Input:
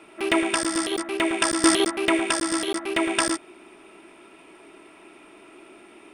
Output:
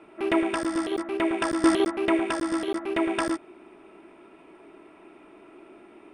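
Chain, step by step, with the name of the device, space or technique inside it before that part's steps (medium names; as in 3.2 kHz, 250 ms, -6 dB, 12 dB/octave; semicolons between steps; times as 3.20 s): through cloth (treble shelf 2.6 kHz -16 dB)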